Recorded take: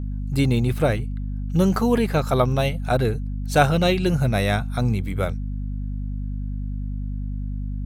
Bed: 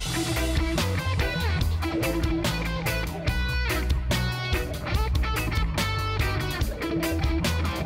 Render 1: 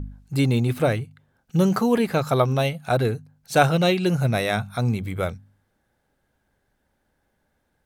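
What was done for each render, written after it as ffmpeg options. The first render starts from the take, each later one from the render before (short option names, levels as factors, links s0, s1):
-af "bandreject=f=50:t=h:w=4,bandreject=f=100:t=h:w=4,bandreject=f=150:t=h:w=4,bandreject=f=200:t=h:w=4,bandreject=f=250:t=h:w=4"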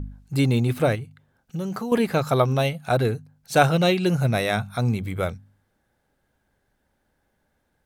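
-filter_complex "[0:a]asettb=1/sr,asplit=3[s0][s1][s2];[s0]atrim=end=0.954[s3];[s1]atrim=start=0.95:end=1.92,asetpts=PTS-STARTPTS,afade=t=in:d=0.004:c=qsin,afade=t=out:st=0.966:d=0.004:c=qsin,acompressor=threshold=0.0316:ratio=2.5:attack=3.2:release=140:knee=1:detection=peak[s4];[s2]atrim=start=1.916[s5];[s3][s4]acrossfade=d=0.004:c1=hsin:c2=qsin[s6];[s6][s5]acrossfade=d=0.004:c1=qsin:c2=hsin"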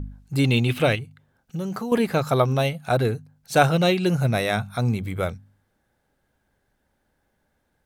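-filter_complex "[0:a]asettb=1/sr,asplit=3[s0][s1][s2];[s0]atrim=end=0.444[s3];[s1]atrim=start=0.44:end=0.99,asetpts=PTS-STARTPTS,afade=t=in:d=0.004:c=qsin,afade=t=out:st=0.546:d=0.004:c=qsin,equalizer=f=2900:t=o:w=0.87:g=13[s4];[s2]atrim=start=0.986[s5];[s3][s4]acrossfade=d=0.004:c1=hsin:c2=qsin[s6];[s6][s5]acrossfade=d=0.004:c1=qsin:c2=hsin"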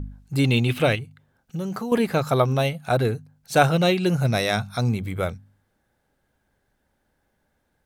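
-filter_complex "[0:a]asettb=1/sr,asplit=3[s0][s1][s2];[s0]atrim=end=4.254[s3];[s1]atrim=start=4.25:end=4.88,asetpts=PTS-STARTPTS,afade=t=in:d=0.004:c=qsin,afade=t=out:st=0.626:d=0.004:c=qsin,equalizer=f=5100:t=o:w=0.59:g=11[s4];[s2]atrim=start=4.876[s5];[s3][s4]acrossfade=d=0.004:c1=hsin:c2=qsin[s6];[s6][s5]acrossfade=d=0.004:c1=qsin:c2=hsin"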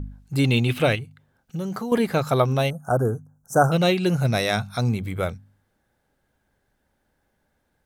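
-filter_complex "[0:a]asettb=1/sr,asplit=3[s0][s1][s2];[s0]atrim=end=1.634[s3];[s1]atrim=start=1.63:end=2.13,asetpts=PTS-STARTPTS,afade=t=in:d=0.004:c=qsin,afade=t=out:st=0.496:d=0.004:c=qsin,bandreject=f=2600:w=12[s4];[s2]atrim=start=2.126[s5];[s3][s4]acrossfade=d=0.004:c1=hsin:c2=qsin[s6];[s6][s5]acrossfade=d=0.004:c1=qsin:c2=hsin,asettb=1/sr,asplit=3[s7][s8][s9];[s7]atrim=end=2.704[s10];[s8]atrim=start=2.7:end=3.72,asetpts=PTS-STARTPTS,afade=t=in:d=0.004:c=qsin,afade=t=out:st=1.016:d=0.004:c=qsin,asuperstop=centerf=3000:order=12:qfactor=0.69[s11];[s9]atrim=start=3.716[s12];[s10][s11]acrossfade=d=0.004:c1=hsin:c2=qsin[s13];[s13][s12]acrossfade=d=0.004:c1=qsin:c2=hsin"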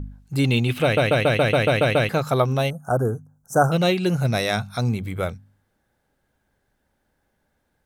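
-filter_complex "[0:a]asplit=10[s0][s1][s2][s3][s4][s5][s6][s7][s8][s9];[s0]atrim=end=0.972[s10];[s1]atrim=start=0.828:end=0.972[s11];[s2]atrim=start=0.828:end=0.972[s12];[s3]atrim=start=0.828:end=0.972[s13];[s4]atrim=start=0.828:end=0.972[s14];[s5]atrim=start=0.828:end=0.972[s15];[s6]atrim=start=0.828:end=0.972[s16];[s7]atrim=start=0.828:end=0.972[s17];[s8]atrim=start=0.828:end=0.972[s18];[s9]atrim=start=2.088[s19];[s10][s11]acrossfade=d=0.004:c1=hsin:c2=hsin[s20];[s20][s12]acrossfade=d=0.004:c1=hsin:c2=hsin[s21];[s21][s13]acrossfade=d=0.004:c1=hsin:c2=hsin[s22];[s22][s14]acrossfade=d=0.004:c1=hsin:c2=hsin[s23];[s23][s15]acrossfade=d=0.004:c1=hsin:c2=hsin[s24];[s24][s16]acrossfade=d=0.004:c1=hsin:c2=hsin[s25];[s25][s17]acrossfade=d=0.004:c1=hsin:c2=hsin[s26];[s26][s18]acrossfade=d=0.004:c1=hsin:c2=hsin[s27];[s27][s19]acrossfade=d=0.004:c1=hsin:c2=hsin"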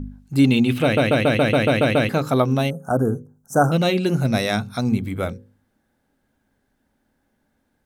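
-af "equalizer=f=250:t=o:w=0.64:g=10,bandreject=f=60:t=h:w=6,bandreject=f=120:t=h:w=6,bandreject=f=180:t=h:w=6,bandreject=f=240:t=h:w=6,bandreject=f=300:t=h:w=6,bandreject=f=360:t=h:w=6,bandreject=f=420:t=h:w=6,bandreject=f=480:t=h:w=6,bandreject=f=540:t=h:w=6"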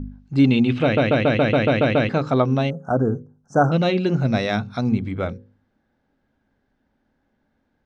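-af "lowpass=f=6000:w=0.5412,lowpass=f=6000:w=1.3066,highshelf=f=4100:g=-7.5"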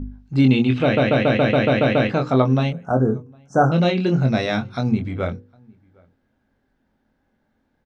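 -filter_complex "[0:a]asplit=2[s0][s1];[s1]adelay=23,volume=0.473[s2];[s0][s2]amix=inputs=2:normalize=0,asplit=2[s3][s4];[s4]adelay=758,volume=0.0355,highshelf=f=4000:g=-17.1[s5];[s3][s5]amix=inputs=2:normalize=0"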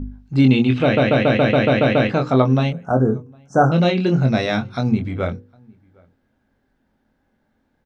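-af "volume=1.19"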